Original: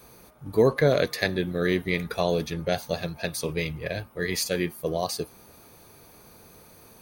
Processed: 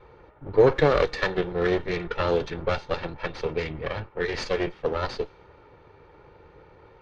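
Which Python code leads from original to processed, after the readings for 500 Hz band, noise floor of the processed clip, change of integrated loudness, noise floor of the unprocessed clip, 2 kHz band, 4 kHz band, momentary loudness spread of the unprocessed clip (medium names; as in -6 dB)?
+2.0 dB, -54 dBFS, +0.5 dB, -52 dBFS, 0.0 dB, -3.5 dB, 9 LU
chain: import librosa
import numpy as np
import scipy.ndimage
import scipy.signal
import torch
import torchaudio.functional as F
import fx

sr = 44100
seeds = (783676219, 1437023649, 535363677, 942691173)

y = fx.lower_of_two(x, sr, delay_ms=2.2)
y = fx.env_lowpass(y, sr, base_hz=2000.0, full_db=-21.0)
y = scipy.ndimage.gaussian_filter1d(y, 1.8, mode='constant')
y = F.gain(torch.from_numpy(y), 4.5).numpy()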